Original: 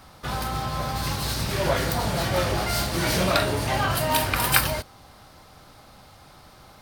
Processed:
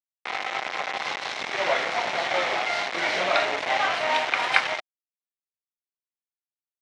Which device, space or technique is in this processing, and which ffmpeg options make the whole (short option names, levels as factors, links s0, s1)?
hand-held game console: -af "acrusher=bits=3:mix=0:aa=0.000001,highpass=480,equalizer=f=730:t=q:w=4:g=6,equalizer=f=2100:t=q:w=4:g=8,equalizer=f=4700:t=q:w=4:g=-6,lowpass=f=4900:w=0.5412,lowpass=f=4900:w=1.3066,volume=0.841"